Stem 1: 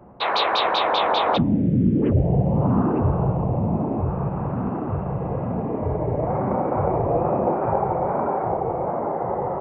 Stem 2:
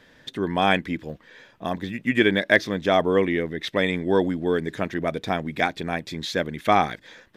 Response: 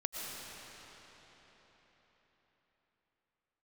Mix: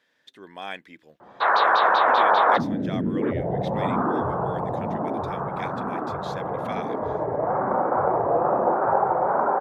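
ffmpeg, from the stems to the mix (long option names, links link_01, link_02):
-filter_complex "[0:a]highshelf=frequency=2000:width_type=q:width=3:gain=-7.5,adelay=1200,volume=3dB[link_01];[1:a]volume=-12.5dB[link_02];[link_01][link_02]amix=inputs=2:normalize=0,highpass=frequency=650:poles=1"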